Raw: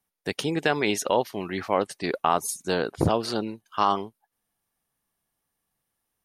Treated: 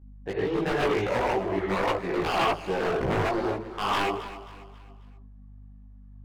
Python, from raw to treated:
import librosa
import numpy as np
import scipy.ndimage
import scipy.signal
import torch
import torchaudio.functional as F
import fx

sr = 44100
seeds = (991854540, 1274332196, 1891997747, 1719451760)

p1 = scipy.signal.sosfilt(scipy.signal.butter(2, 1200.0, 'lowpass', fs=sr, output='sos'), x)
p2 = fx.peak_eq(p1, sr, hz=210.0, db=-9.0, octaves=1.6)
p3 = fx.level_steps(p2, sr, step_db=18)
p4 = p2 + (p3 * librosa.db_to_amplitude(3.0))
p5 = fx.rev_gated(p4, sr, seeds[0], gate_ms=170, shape='rising', drr_db=-3.5)
p6 = fx.add_hum(p5, sr, base_hz=50, snr_db=24)
p7 = 10.0 ** (-17.5 / 20.0) * (np.abs((p6 / 10.0 ** (-17.5 / 20.0) + 3.0) % 4.0 - 2.0) - 1.0)
p8 = fx.echo_feedback(p7, sr, ms=269, feedback_pct=40, wet_db=-14.0)
y = fx.chorus_voices(p8, sr, voices=4, hz=1.5, base_ms=18, depth_ms=3.0, mix_pct=50)